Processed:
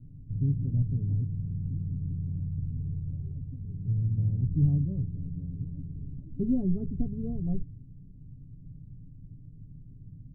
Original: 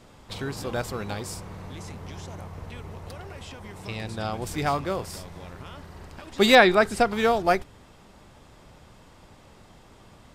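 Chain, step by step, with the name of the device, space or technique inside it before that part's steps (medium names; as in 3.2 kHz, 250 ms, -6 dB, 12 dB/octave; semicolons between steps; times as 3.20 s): the neighbour's flat through the wall (low-pass 200 Hz 24 dB/octave; peaking EQ 90 Hz +4.5 dB 0.68 oct); 5.03–6.14 s: peaking EQ 340 Hz +5 dB 1.2 oct; comb 7.1 ms, depth 72%; trim +5.5 dB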